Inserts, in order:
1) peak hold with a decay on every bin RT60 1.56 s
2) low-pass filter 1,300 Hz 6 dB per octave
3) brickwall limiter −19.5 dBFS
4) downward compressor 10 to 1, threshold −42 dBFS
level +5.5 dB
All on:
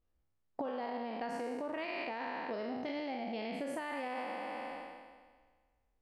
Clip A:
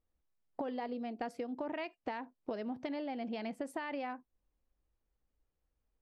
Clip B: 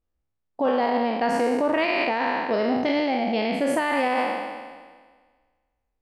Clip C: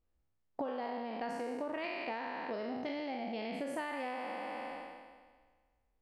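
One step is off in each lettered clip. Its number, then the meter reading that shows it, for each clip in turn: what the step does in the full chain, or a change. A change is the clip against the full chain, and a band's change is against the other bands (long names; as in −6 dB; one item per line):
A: 1, 250 Hz band +4.0 dB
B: 4, average gain reduction 13.5 dB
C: 3, average gain reduction 1.5 dB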